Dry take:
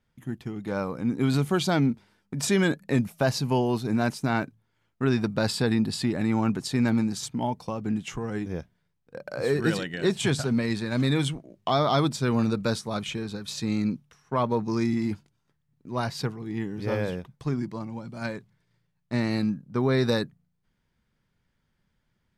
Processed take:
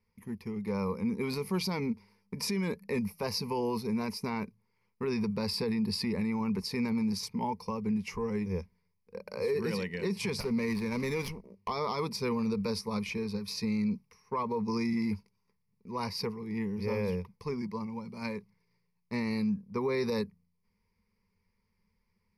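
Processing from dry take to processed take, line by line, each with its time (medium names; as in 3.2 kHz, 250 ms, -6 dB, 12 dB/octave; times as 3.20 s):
10.40–11.68 s: sliding maximum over 5 samples
whole clip: rippled EQ curve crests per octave 0.86, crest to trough 16 dB; peak limiter -17.5 dBFS; trim -6 dB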